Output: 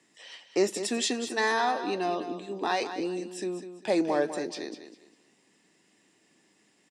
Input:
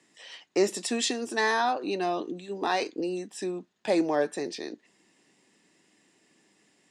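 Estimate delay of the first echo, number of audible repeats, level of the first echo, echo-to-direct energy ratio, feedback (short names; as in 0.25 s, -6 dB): 0.199 s, 3, -10.5 dB, -10.0 dB, 27%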